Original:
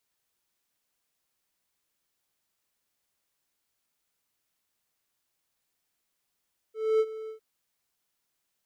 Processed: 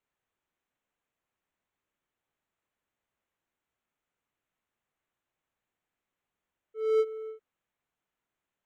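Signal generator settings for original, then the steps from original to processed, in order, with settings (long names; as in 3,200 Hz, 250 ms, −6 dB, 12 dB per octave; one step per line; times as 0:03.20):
note with an ADSR envelope triangle 439 Hz, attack 260 ms, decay 50 ms, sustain −16.5 dB, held 0.55 s, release 105 ms −17 dBFS
adaptive Wiener filter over 9 samples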